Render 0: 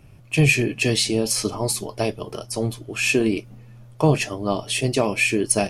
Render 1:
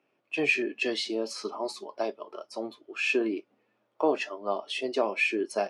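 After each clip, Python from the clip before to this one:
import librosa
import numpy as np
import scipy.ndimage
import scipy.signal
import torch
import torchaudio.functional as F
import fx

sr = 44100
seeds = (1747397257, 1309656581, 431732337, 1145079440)

y = scipy.signal.sosfilt(scipy.signal.butter(2, 3400.0, 'lowpass', fs=sr, output='sos'), x)
y = fx.noise_reduce_blind(y, sr, reduce_db=9)
y = scipy.signal.sosfilt(scipy.signal.butter(4, 300.0, 'highpass', fs=sr, output='sos'), y)
y = y * librosa.db_to_amplitude(-4.5)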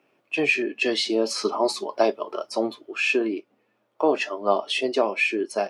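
y = fx.rider(x, sr, range_db=4, speed_s=0.5)
y = y * librosa.db_to_amplitude(6.5)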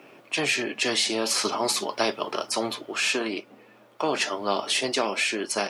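y = fx.spectral_comp(x, sr, ratio=2.0)
y = y * librosa.db_to_amplitude(-3.0)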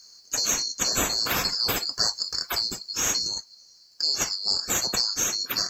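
y = fx.band_swap(x, sr, width_hz=4000)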